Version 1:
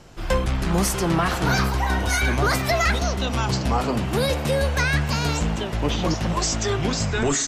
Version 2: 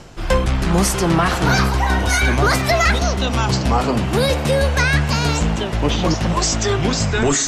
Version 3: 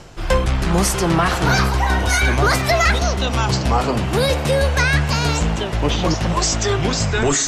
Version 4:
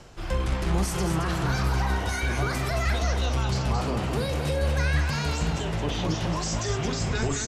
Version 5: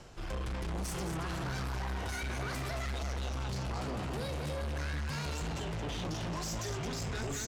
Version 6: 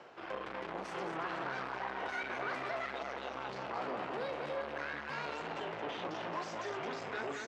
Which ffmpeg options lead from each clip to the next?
ffmpeg -i in.wav -af "lowpass=12000,areverse,acompressor=mode=upward:threshold=-27dB:ratio=2.5,areverse,volume=5dB" out.wav
ffmpeg -i in.wav -af "equalizer=frequency=230:width_type=o:width=0.67:gain=-3.5" out.wav
ffmpeg -i in.wav -filter_complex "[0:a]acrossover=split=250[link_01][link_02];[link_02]alimiter=limit=-16dB:level=0:latency=1:release=36[link_03];[link_01][link_03]amix=inputs=2:normalize=0,aecho=1:1:43.73|221.6:0.316|0.501,volume=-8dB" out.wav
ffmpeg -i in.wav -af "asoftclip=type=tanh:threshold=-29.5dB,volume=-4dB" out.wav
ffmpeg -i in.wav -af "highpass=420,lowpass=2300,volume=3.5dB" out.wav

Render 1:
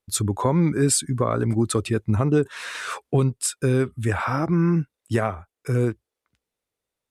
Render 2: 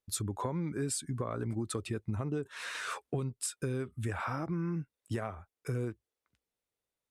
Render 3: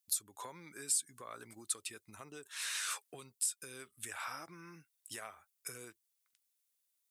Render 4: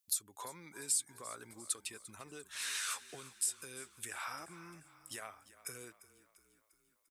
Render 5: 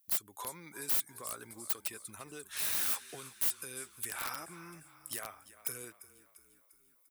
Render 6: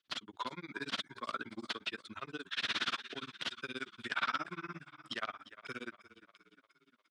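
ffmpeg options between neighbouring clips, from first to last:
ffmpeg -i in.wav -af "acompressor=threshold=-26dB:ratio=4,volume=-6.5dB" out.wav
ffmpeg -i in.wav -af "aderivative,alimiter=level_in=6dB:limit=-24dB:level=0:latency=1:release=335,volume=-6dB,volume=9dB" out.wav
ffmpeg -i in.wav -filter_complex "[0:a]asplit=6[link_01][link_02][link_03][link_04][link_05][link_06];[link_02]adelay=347,afreqshift=-30,volume=-17dB[link_07];[link_03]adelay=694,afreqshift=-60,volume=-22.4dB[link_08];[link_04]adelay=1041,afreqshift=-90,volume=-27.7dB[link_09];[link_05]adelay=1388,afreqshift=-120,volume=-33.1dB[link_10];[link_06]adelay=1735,afreqshift=-150,volume=-38.4dB[link_11];[link_01][link_07][link_08][link_09][link_10][link_11]amix=inputs=6:normalize=0" out.wav
ffmpeg -i in.wav -filter_complex "[0:a]asplit=2[link_01][link_02];[link_02]alimiter=level_in=8.5dB:limit=-24dB:level=0:latency=1:release=13,volume=-8.5dB,volume=-1dB[link_03];[link_01][link_03]amix=inputs=2:normalize=0,aeval=exprs='(mod(26.6*val(0)+1,2)-1)/26.6':channel_layout=same,aexciter=amount=2.8:drive=3.8:freq=9900,volume=-3dB" out.wav
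ffmpeg -i in.wav -af "highpass=frequency=110:width=0.5412,highpass=frequency=110:width=1.3066,equalizer=frequency=120:width_type=q:width=4:gain=-6,equalizer=frequency=250:width_type=q:width=4:gain=5,equalizer=frequency=490:width_type=q:width=4:gain=-5,equalizer=frequency=810:width_type=q:width=4:gain=-6,equalizer=frequency=1400:width_type=q:width=4:gain=5,equalizer=frequency=3300:width_type=q:width=4:gain=7,lowpass=frequency=4300:width=0.5412,lowpass=frequency=4300:width=1.3066,flanger=delay=1.9:depth=7.5:regen=-67:speed=0.89:shape=sinusoidal,tremolo=f=17:d=1,volume=13dB" out.wav

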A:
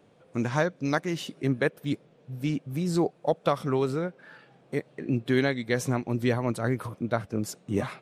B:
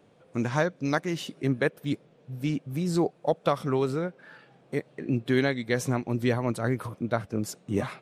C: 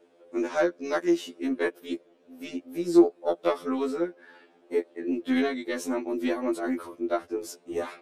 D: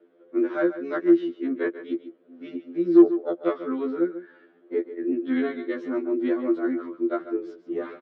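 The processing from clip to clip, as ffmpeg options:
ffmpeg -i in.wav -af anull out.wav
ffmpeg -i in.wav -af "aeval=exprs='0.316*(cos(1*acos(clip(val(0)/0.316,-1,1)))-cos(1*PI/2))+0.0501*(cos(2*acos(clip(val(0)/0.316,-1,1)))-cos(2*PI/2))':channel_layout=same,lowshelf=frequency=220:width_type=q:width=3:gain=-13,afftfilt=real='re*2*eq(mod(b,4),0)':imag='im*2*eq(mod(b,4),0)':win_size=2048:overlap=0.75" out.wav
ffmpeg -i in.wav -filter_complex "[0:a]acrossover=split=430[link_01][link_02];[link_01]volume=17.5dB,asoftclip=hard,volume=-17.5dB[link_03];[link_03][link_02]amix=inputs=2:normalize=0,highpass=frequency=120:width=0.5412,highpass=frequency=120:width=1.3066,equalizer=frequency=200:width_type=q:width=4:gain=5,equalizer=frequency=340:width_type=q:width=4:gain=8,equalizer=frequency=840:width_type=q:width=4:gain=-9,equalizer=frequency=1400:width_type=q:width=4:gain=4,equalizer=frequency=2600:width_type=q:width=4:gain=-8,lowpass=frequency=3100:width=0.5412,lowpass=frequency=3100:width=1.3066,aecho=1:1:142:0.224,volume=-2dB" out.wav

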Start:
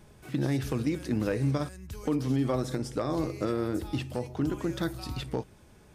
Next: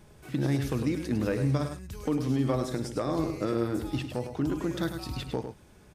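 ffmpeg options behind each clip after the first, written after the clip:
ffmpeg -i in.wav -af "aecho=1:1:103:0.398" out.wav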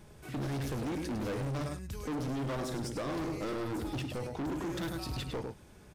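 ffmpeg -i in.wav -af "volume=33dB,asoftclip=hard,volume=-33dB" out.wav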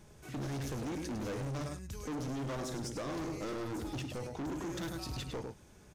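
ffmpeg -i in.wav -af "equalizer=frequency=6400:width_type=o:width=0.45:gain=6.5,volume=-3dB" out.wav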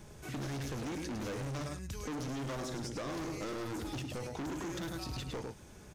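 ffmpeg -i in.wav -filter_complex "[0:a]acrossover=split=1300|5400[link_01][link_02][link_03];[link_01]acompressor=threshold=-44dB:ratio=4[link_04];[link_02]acompressor=threshold=-51dB:ratio=4[link_05];[link_03]acompressor=threshold=-58dB:ratio=4[link_06];[link_04][link_05][link_06]amix=inputs=3:normalize=0,volume=5dB" out.wav

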